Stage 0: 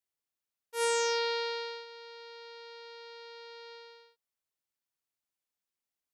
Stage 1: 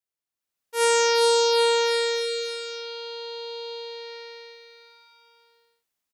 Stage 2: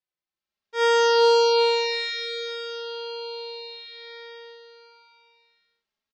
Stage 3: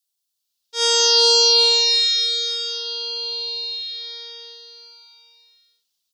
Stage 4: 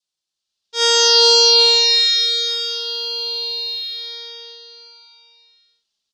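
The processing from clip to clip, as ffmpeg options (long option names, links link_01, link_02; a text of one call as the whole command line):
ffmpeg -i in.wav -af "dynaudnorm=framelen=120:gausssize=9:maxgain=11dB,aecho=1:1:410|779|1111|1410|1679:0.631|0.398|0.251|0.158|0.1,volume=-2dB" out.wav
ffmpeg -i in.wav -filter_complex "[0:a]lowpass=frequency=5100:width=0.5412,lowpass=frequency=5100:width=1.3066,asplit=2[link_01][link_02];[link_02]adelay=3.5,afreqshift=0.57[link_03];[link_01][link_03]amix=inputs=2:normalize=1,volume=3dB" out.wav
ffmpeg -i in.wav -af "aexciter=amount=13:drive=1.1:freq=3100,volume=-4.5dB" out.wav
ffmpeg -i in.wav -af "adynamicsmooth=sensitivity=4.5:basefreq=7100,adynamicequalizer=threshold=0.00631:dfrequency=1700:dqfactor=3.4:tfrequency=1700:tqfactor=3.4:attack=5:release=100:ratio=0.375:range=3:mode=boostabove:tftype=bell,lowpass=9100,volume=3.5dB" out.wav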